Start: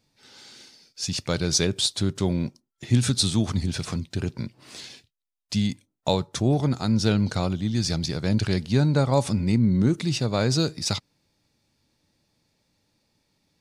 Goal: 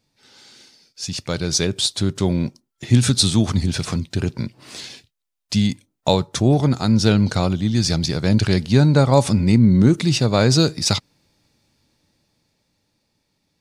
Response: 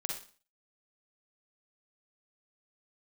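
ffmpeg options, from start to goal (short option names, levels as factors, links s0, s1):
-af "dynaudnorm=f=220:g=17:m=3.76"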